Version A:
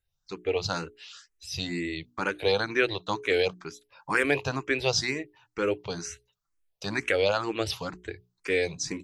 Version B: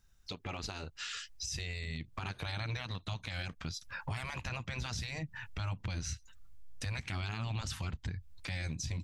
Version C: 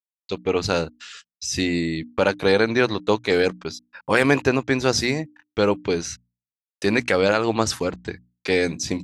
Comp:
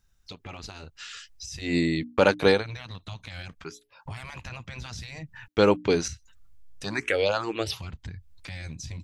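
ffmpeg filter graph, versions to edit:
-filter_complex "[2:a]asplit=2[s0][s1];[0:a]asplit=2[s2][s3];[1:a]asplit=5[s4][s5][s6][s7][s8];[s4]atrim=end=1.77[s9];[s0]atrim=start=1.61:end=2.64[s10];[s5]atrim=start=2.48:end=3.642[s11];[s2]atrim=start=3.638:end=4.062[s12];[s6]atrim=start=4.058:end=5.482[s13];[s1]atrim=start=5.478:end=6.082[s14];[s7]atrim=start=6.078:end=6.842[s15];[s3]atrim=start=6.838:end=7.792[s16];[s8]atrim=start=7.788[s17];[s9][s10]acrossfade=d=0.16:c1=tri:c2=tri[s18];[s18][s11]acrossfade=d=0.16:c1=tri:c2=tri[s19];[s19][s12]acrossfade=d=0.004:c1=hsin:c2=hsin[s20];[s20][s13]acrossfade=d=0.004:c1=hsin:c2=hsin[s21];[s21][s14]acrossfade=d=0.004:c1=hsin:c2=hsin[s22];[s22][s15]acrossfade=d=0.004:c1=hsin:c2=hsin[s23];[s23][s16]acrossfade=d=0.004:c1=hsin:c2=hsin[s24];[s24][s17]acrossfade=d=0.004:c1=hsin:c2=hsin"

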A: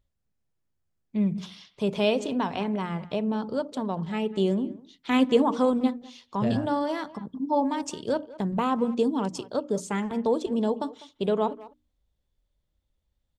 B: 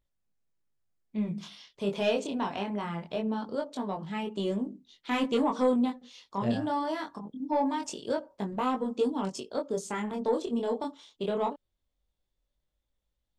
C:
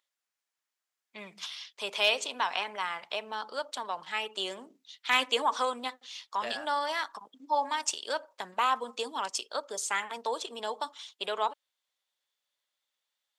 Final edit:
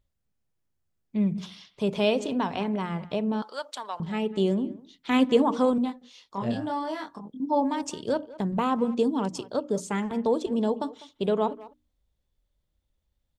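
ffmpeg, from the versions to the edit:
-filter_complex "[0:a]asplit=3[s0][s1][s2];[s0]atrim=end=3.422[s3];[2:a]atrim=start=3.418:end=4.002[s4];[s1]atrim=start=3.998:end=5.782[s5];[1:a]atrim=start=5.778:end=7.402[s6];[s2]atrim=start=7.398[s7];[s3][s4]acrossfade=d=0.004:c1=hsin:c2=hsin[s8];[s8][s5]acrossfade=d=0.004:c1=hsin:c2=hsin[s9];[s9][s6]acrossfade=d=0.004:c1=hsin:c2=hsin[s10];[s10][s7]acrossfade=d=0.004:c1=hsin:c2=hsin"

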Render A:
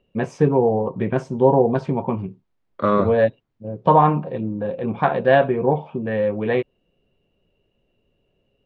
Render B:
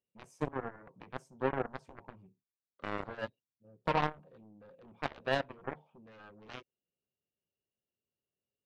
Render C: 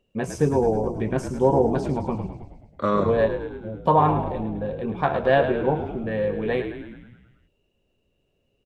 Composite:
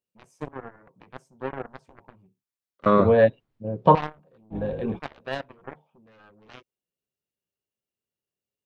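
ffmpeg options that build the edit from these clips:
-filter_complex "[1:a]asplit=3[s0][s1][s2];[s0]atrim=end=2.862[s3];[0:a]atrim=start=2.858:end=3.952[s4];[s1]atrim=start=3.948:end=4.56[s5];[2:a]atrim=start=4.5:end=5[s6];[s2]atrim=start=4.94[s7];[s3][s4]acrossfade=d=0.004:c1=hsin:c2=hsin[s8];[s8][s5]acrossfade=d=0.004:c1=hsin:c2=hsin[s9];[s9][s6]acrossfade=d=0.06:c1=tri:c2=tri[s10];[s10][s7]acrossfade=d=0.06:c1=tri:c2=tri"

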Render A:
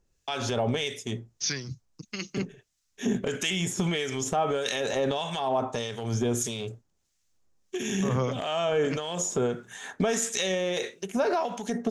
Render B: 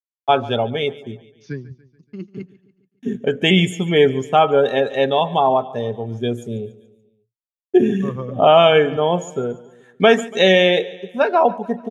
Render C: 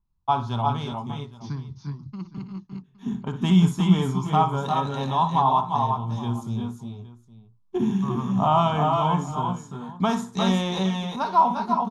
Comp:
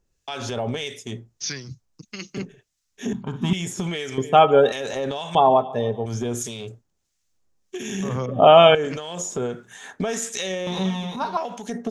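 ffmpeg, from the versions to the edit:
-filter_complex "[2:a]asplit=2[s0][s1];[1:a]asplit=3[s2][s3][s4];[0:a]asplit=6[s5][s6][s7][s8][s9][s10];[s5]atrim=end=3.132[s11];[s0]atrim=start=3.128:end=3.532[s12];[s6]atrim=start=3.528:end=4.182[s13];[s2]atrim=start=4.178:end=4.722[s14];[s7]atrim=start=4.718:end=5.352[s15];[s3]atrim=start=5.348:end=6.062[s16];[s8]atrim=start=6.058:end=8.262[s17];[s4]atrim=start=8.258:end=8.752[s18];[s9]atrim=start=8.748:end=10.672[s19];[s1]atrim=start=10.668:end=11.372[s20];[s10]atrim=start=11.368[s21];[s11][s12]acrossfade=d=0.004:c1=hsin:c2=hsin[s22];[s22][s13]acrossfade=d=0.004:c1=hsin:c2=hsin[s23];[s23][s14]acrossfade=d=0.004:c1=hsin:c2=hsin[s24];[s24][s15]acrossfade=d=0.004:c1=hsin:c2=hsin[s25];[s25][s16]acrossfade=d=0.004:c1=hsin:c2=hsin[s26];[s26][s17]acrossfade=d=0.004:c1=hsin:c2=hsin[s27];[s27][s18]acrossfade=d=0.004:c1=hsin:c2=hsin[s28];[s28][s19]acrossfade=d=0.004:c1=hsin:c2=hsin[s29];[s29][s20]acrossfade=d=0.004:c1=hsin:c2=hsin[s30];[s30][s21]acrossfade=d=0.004:c1=hsin:c2=hsin"

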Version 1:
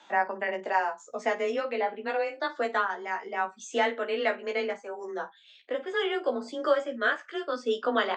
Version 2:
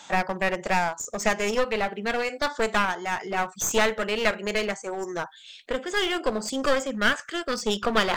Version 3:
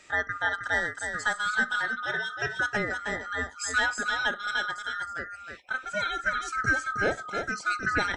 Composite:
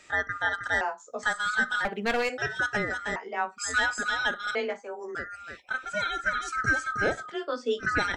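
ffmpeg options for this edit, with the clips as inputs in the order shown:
-filter_complex "[0:a]asplit=4[s0][s1][s2][s3];[2:a]asplit=6[s4][s5][s6][s7][s8][s9];[s4]atrim=end=0.812[s10];[s0]atrim=start=0.808:end=1.232[s11];[s5]atrim=start=1.228:end=1.852[s12];[1:a]atrim=start=1.848:end=2.382[s13];[s6]atrim=start=2.378:end=3.162[s14];[s1]atrim=start=3.158:end=3.582[s15];[s7]atrim=start=3.578:end=4.552[s16];[s2]atrim=start=4.548:end=5.152[s17];[s8]atrim=start=5.148:end=7.35[s18];[s3]atrim=start=7.25:end=7.87[s19];[s9]atrim=start=7.77[s20];[s10][s11]acrossfade=d=0.004:c1=hsin:c2=hsin[s21];[s21][s12]acrossfade=d=0.004:c1=hsin:c2=hsin[s22];[s22][s13]acrossfade=d=0.004:c1=hsin:c2=hsin[s23];[s23][s14]acrossfade=d=0.004:c1=hsin:c2=hsin[s24];[s24][s15]acrossfade=d=0.004:c1=hsin:c2=hsin[s25];[s25][s16]acrossfade=d=0.004:c1=hsin:c2=hsin[s26];[s26][s17]acrossfade=d=0.004:c1=hsin:c2=hsin[s27];[s27][s18]acrossfade=d=0.004:c1=hsin:c2=hsin[s28];[s28][s19]acrossfade=d=0.1:c1=tri:c2=tri[s29];[s29][s20]acrossfade=d=0.1:c1=tri:c2=tri"

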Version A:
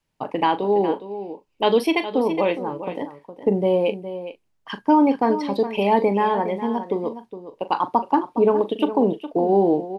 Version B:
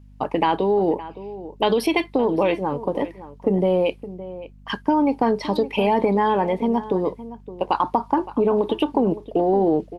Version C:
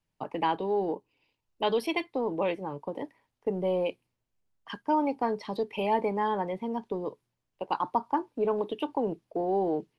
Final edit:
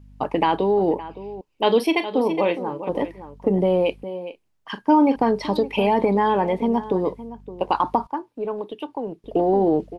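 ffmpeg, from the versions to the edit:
-filter_complex "[0:a]asplit=2[s0][s1];[1:a]asplit=4[s2][s3][s4][s5];[s2]atrim=end=1.412[s6];[s0]atrim=start=1.408:end=2.892[s7];[s3]atrim=start=2.888:end=4.042[s8];[s1]atrim=start=4.038:end=5.162[s9];[s4]atrim=start=5.158:end=8.072[s10];[2:a]atrim=start=8.068:end=9.242[s11];[s5]atrim=start=9.238[s12];[s6][s7]acrossfade=d=0.004:c1=hsin:c2=hsin[s13];[s13][s8]acrossfade=d=0.004:c1=hsin:c2=hsin[s14];[s14][s9]acrossfade=d=0.004:c1=hsin:c2=hsin[s15];[s15][s10]acrossfade=d=0.004:c1=hsin:c2=hsin[s16];[s16][s11]acrossfade=d=0.004:c1=hsin:c2=hsin[s17];[s17][s12]acrossfade=d=0.004:c1=hsin:c2=hsin"

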